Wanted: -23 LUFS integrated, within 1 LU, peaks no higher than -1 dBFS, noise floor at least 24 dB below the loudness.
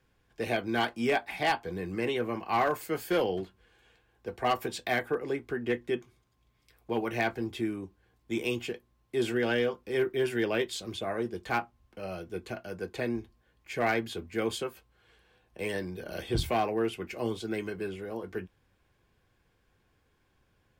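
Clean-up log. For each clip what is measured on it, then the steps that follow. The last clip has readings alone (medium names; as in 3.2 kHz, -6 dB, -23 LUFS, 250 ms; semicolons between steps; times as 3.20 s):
clipped samples 0.3%; clipping level -20.0 dBFS; loudness -32.0 LUFS; peak level -20.0 dBFS; loudness target -23.0 LUFS
-> clip repair -20 dBFS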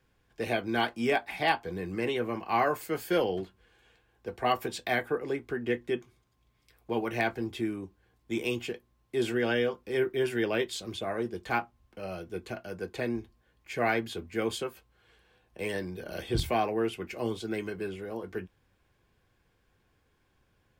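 clipped samples 0.0%; loudness -32.0 LUFS; peak level -12.5 dBFS; loudness target -23.0 LUFS
-> trim +9 dB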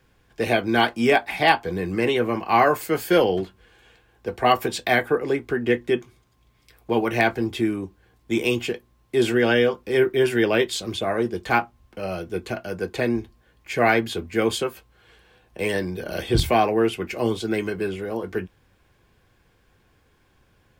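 loudness -23.0 LUFS; peak level -3.5 dBFS; noise floor -62 dBFS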